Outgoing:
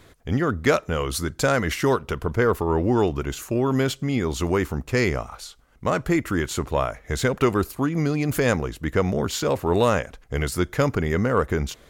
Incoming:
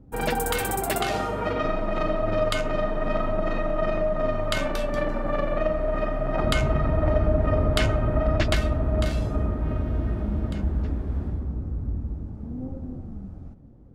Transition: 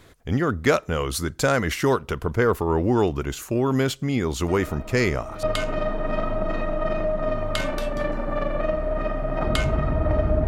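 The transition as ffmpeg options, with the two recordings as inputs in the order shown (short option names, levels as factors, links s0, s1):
-filter_complex "[1:a]asplit=2[s0][s1];[0:a]apad=whole_dur=10.47,atrim=end=10.47,atrim=end=5.432[s2];[s1]atrim=start=2.398:end=7.44[s3];[s0]atrim=start=1.45:end=2.4,asetpts=PTS-STARTPTS,volume=0.251,afade=t=in:d=0.004:c=hsin,afade=t=out:st=0.946:d=0.004:c=hsin,adelay=4480[s4];[s2][s3]acrossfade=d=0.004:c1=hsin:c2=hsin[s5];[s5][s4]amix=inputs=2:normalize=0"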